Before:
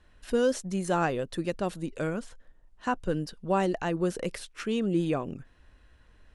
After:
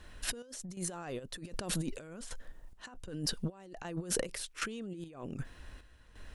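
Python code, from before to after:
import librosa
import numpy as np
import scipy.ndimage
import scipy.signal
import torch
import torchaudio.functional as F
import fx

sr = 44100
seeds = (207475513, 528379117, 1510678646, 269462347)

y = fx.high_shelf(x, sr, hz=4600.0, db=7.5)
y = fx.over_compress(y, sr, threshold_db=-38.0, ratio=-1.0)
y = fx.chopper(y, sr, hz=1.3, depth_pct=65, duty_pct=55)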